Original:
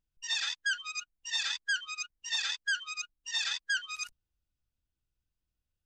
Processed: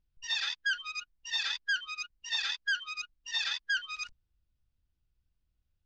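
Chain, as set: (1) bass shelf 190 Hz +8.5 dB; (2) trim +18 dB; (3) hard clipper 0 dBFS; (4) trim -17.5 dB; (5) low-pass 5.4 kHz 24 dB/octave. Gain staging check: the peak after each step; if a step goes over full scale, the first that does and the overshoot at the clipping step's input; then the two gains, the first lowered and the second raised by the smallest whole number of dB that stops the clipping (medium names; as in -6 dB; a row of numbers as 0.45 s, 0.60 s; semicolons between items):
-21.0 dBFS, -3.0 dBFS, -3.0 dBFS, -20.5 dBFS, -21.5 dBFS; nothing clips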